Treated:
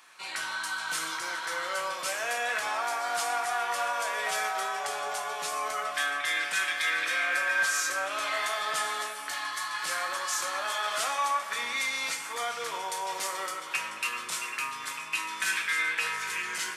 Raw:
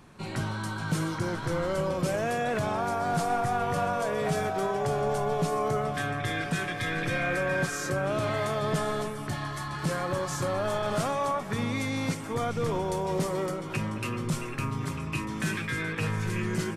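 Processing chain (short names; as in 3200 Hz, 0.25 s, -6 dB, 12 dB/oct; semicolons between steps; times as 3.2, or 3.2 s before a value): HPF 1400 Hz 12 dB/oct; on a send: reverb RT60 0.85 s, pre-delay 5 ms, DRR 4 dB; on the sum: gain +5.5 dB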